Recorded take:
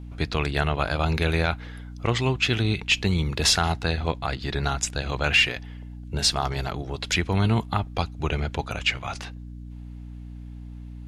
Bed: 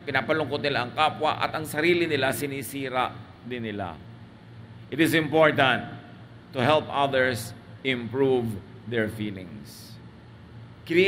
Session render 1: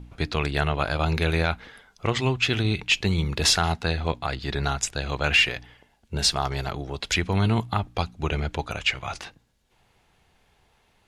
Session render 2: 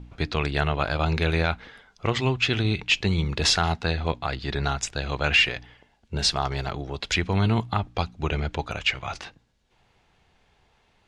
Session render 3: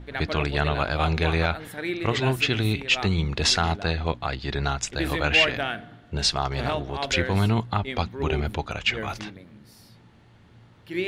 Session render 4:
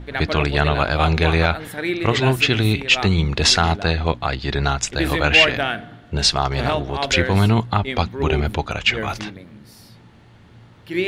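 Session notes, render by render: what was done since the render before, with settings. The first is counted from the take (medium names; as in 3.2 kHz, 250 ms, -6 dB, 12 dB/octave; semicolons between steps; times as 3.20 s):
de-hum 60 Hz, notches 5
low-pass 6.7 kHz 12 dB/octave
add bed -8 dB
trim +6 dB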